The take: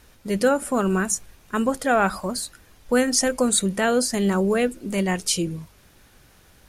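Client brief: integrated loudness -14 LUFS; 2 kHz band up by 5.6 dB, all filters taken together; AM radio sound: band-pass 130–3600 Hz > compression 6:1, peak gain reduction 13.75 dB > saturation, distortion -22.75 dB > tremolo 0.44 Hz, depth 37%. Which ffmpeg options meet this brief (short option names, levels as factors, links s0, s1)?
-af "highpass=130,lowpass=3600,equalizer=f=2000:t=o:g=8,acompressor=threshold=0.0447:ratio=6,asoftclip=threshold=0.106,tremolo=f=0.44:d=0.37,volume=10"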